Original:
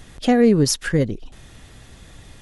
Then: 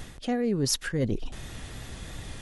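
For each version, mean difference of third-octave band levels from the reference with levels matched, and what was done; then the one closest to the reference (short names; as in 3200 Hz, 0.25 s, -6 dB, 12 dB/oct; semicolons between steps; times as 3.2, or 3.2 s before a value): 8.5 dB: reverse; compressor 10:1, threshold -28 dBFS, peak gain reduction 18 dB; reverse; vibrato 2.9 Hz 28 cents; gain +4 dB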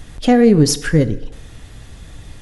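2.0 dB: low shelf 130 Hz +7 dB; FDN reverb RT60 0.95 s, low-frequency decay 0.7×, high-frequency decay 0.75×, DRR 12.5 dB; gain +2.5 dB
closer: second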